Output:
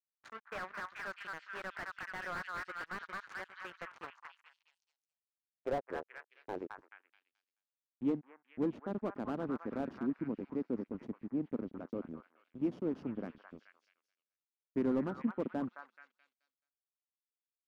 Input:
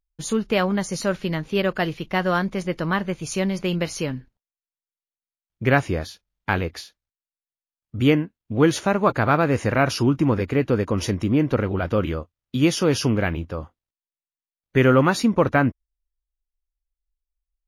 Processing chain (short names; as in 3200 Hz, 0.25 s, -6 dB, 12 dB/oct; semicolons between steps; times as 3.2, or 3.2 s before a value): weighting filter A; backlash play -20 dBFS; delay with a stepping band-pass 0.215 s, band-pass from 1300 Hz, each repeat 0.7 oct, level -2 dB; band-pass sweep 1500 Hz -> 240 Hz, 3.6–7.52; slew limiter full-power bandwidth 23 Hz; gain -2.5 dB